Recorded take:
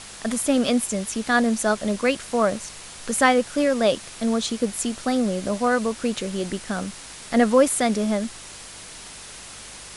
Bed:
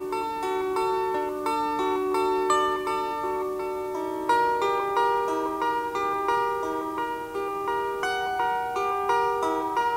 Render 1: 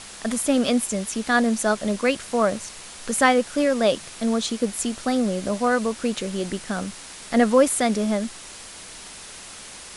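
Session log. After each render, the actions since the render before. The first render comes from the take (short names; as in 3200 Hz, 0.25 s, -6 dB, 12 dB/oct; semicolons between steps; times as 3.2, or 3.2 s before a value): de-hum 50 Hz, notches 3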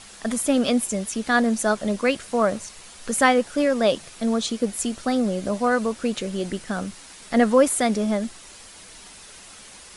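denoiser 6 dB, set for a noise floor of -41 dBFS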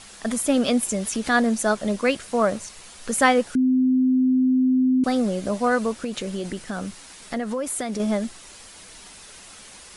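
0.83–1.44 upward compressor, threshold -21 dBFS; 3.55–5.04 bleep 257 Hz -15.5 dBFS; 6.04–8 compressor 5:1, threshold -24 dBFS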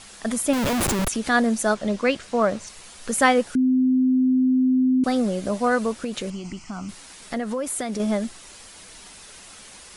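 0.53–1.08 Schmitt trigger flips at -27 dBFS; 1.74–2.67 LPF 6700 Hz; 6.3–6.89 fixed phaser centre 2500 Hz, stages 8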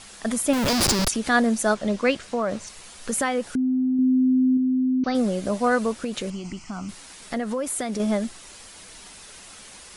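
0.68–1.11 bell 4900 Hz +14 dB 0.66 oct; 2.23–3.99 compressor 3:1, threshold -21 dBFS; 4.57–5.15 rippled Chebyshev low-pass 6200 Hz, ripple 3 dB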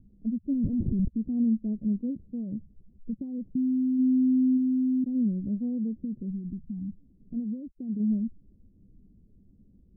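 spectral gate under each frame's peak -20 dB strong; inverse Chebyshev low-pass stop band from 1500 Hz, stop band 80 dB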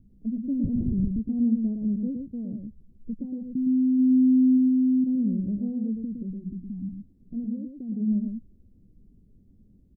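echo 0.113 s -4.5 dB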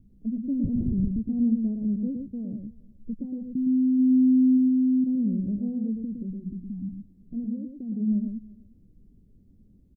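echo 0.349 s -23.5 dB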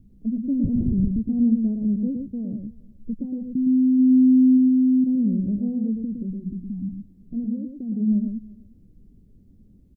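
gain +4 dB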